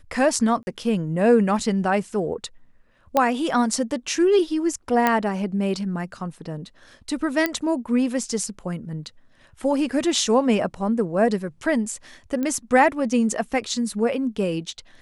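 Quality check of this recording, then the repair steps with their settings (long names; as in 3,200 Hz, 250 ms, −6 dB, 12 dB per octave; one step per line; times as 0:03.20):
0:00.63–0:00.67: drop-out 40 ms
0:03.17: click −7 dBFS
0:05.07: click −6 dBFS
0:07.46: click −8 dBFS
0:12.43: click −15 dBFS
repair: click removal
repair the gap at 0:00.63, 40 ms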